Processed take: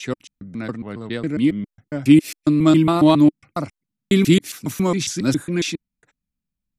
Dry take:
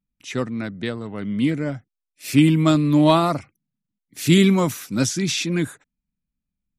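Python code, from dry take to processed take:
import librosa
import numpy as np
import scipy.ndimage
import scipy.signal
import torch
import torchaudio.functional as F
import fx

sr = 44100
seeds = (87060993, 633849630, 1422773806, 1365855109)

y = fx.block_reorder(x, sr, ms=137.0, group=3)
y = fx.dynamic_eq(y, sr, hz=310.0, q=3.0, threshold_db=-31.0, ratio=4.0, max_db=6)
y = y * 10.0 ** (-1.0 / 20.0)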